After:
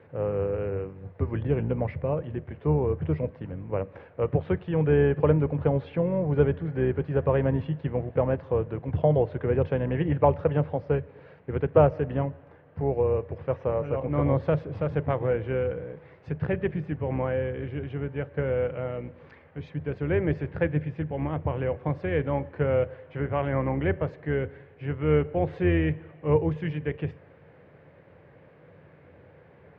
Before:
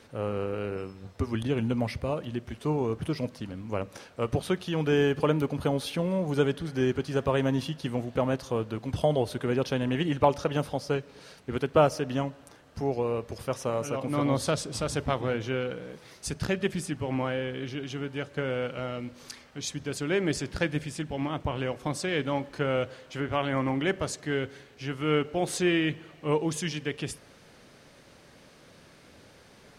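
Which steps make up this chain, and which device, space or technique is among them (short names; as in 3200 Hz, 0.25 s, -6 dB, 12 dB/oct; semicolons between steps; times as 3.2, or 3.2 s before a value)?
sub-octave bass pedal (octaver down 2 oct, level -3 dB; speaker cabinet 83–2100 Hz, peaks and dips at 86 Hz +9 dB, 150 Hz +7 dB, 230 Hz -7 dB, 490 Hz +6 dB, 1300 Hz -5 dB)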